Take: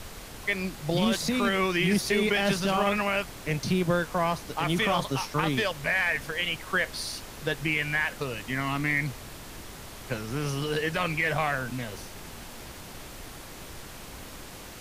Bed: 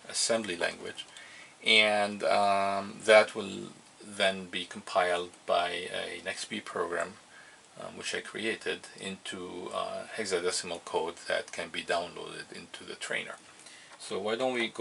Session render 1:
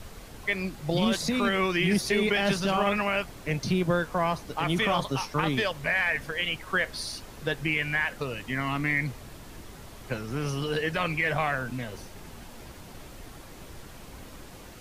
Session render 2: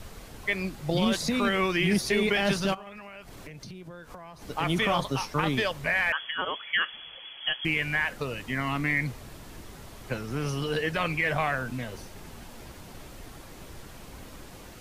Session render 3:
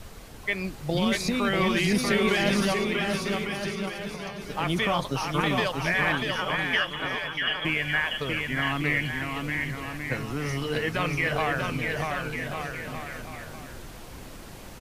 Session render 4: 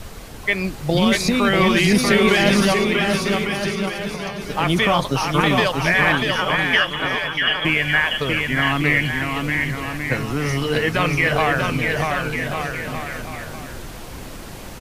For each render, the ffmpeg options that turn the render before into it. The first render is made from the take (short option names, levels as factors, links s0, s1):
-af "afftdn=nr=6:nf=-43"
-filter_complex "[0:a]asplit=3[s0][s1][s2];[s0]afade=t=out:st=2.73:d=0.02[s3];[s1]acompressor=threshold=0.0112:ratio=16:attack=3.2:release=140:knee=1:detection=peak,afade=t=in:st=2.73:d=0.02,afade=t=out:st=4.41:d=0.02[s4];[s2]afade=t=in:st=4.41:d=0.02[s5];[s3][s4][s5]amix=inputs=3:normalize=0,asettb=1/sr,asplit=3[s6][s7][s8];[s6]atrim=end=6.124[s9];[s7]atrim=start=6.12:end=7.65,asetpts=PTS-STARTPTS,afade=t=in:d=0.004:c=qsin,afade=t=out:st=1.526:d=0.004:c=qsin,lowpass=f=2900:t=q:w=0.5098,lowpass=f=2900:t=q:w=0.6013,lowpass=f=2900:t=q:w=0.9,lowpass=f=2900:t=q:w=2.563,afreqshift=-3400[s10];[s8]atrim=start=7.646[s11];[s9][s10]acrossfade=d=0.004:c1=hsin:c2=qsin[s12];[s12][s11]acrossfade=d=0.004:c1=qsin:c2=hsin"
-af "aecho=1:1:640|1152|1562|1889|2151:0.631|0.398|0.251|0.158|0.1"
-af "volume=2.51"